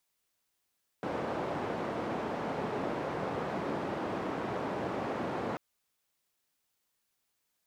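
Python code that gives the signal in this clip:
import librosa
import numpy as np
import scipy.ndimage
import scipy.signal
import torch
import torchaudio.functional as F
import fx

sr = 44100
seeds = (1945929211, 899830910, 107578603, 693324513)

y = fx.band_noise(sr, seeds[0], length_s=4.54, low_hz=140.0, high_hz=730.0, level_db=-35.0)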